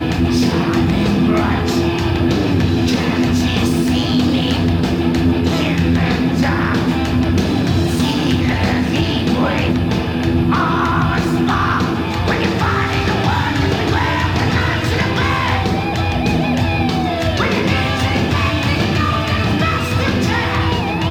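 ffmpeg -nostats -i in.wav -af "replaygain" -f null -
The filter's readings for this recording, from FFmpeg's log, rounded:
track_gain = -0.3 dB
track_peak = 0.550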